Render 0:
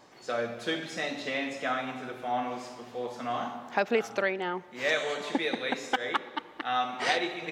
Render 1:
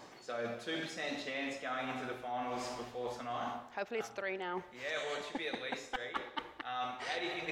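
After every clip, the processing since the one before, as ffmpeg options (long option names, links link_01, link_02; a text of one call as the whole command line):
ffmpeg -i in.wav -af "asubboost=boost=9:cutoff=64,areverse,acompressor=threshold=-40dB:ratio=6,areverse,volume=3.5dB" out.wav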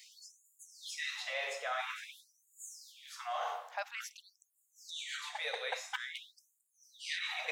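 ffmpeg -i in.wav -af "highshelf=frequency=6800:gain=7.5,afftfilt=real='re*gte(b*sr/1024,400*pow(6800/400,0.5+0.5*sin(2*PI*0.49*pts/sr)))':imag='im*gte(b*sr/1024,400*pow(6800/400,0.5+0.5*sin(2*PI*0.49*pts/sr)))':win_size=1024:overlap=0.75,volume=2dB" out.wav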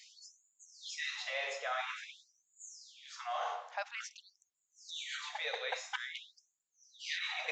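ffmpeg -i in.wav -af "aresample=16000,aresample=44100" out.wav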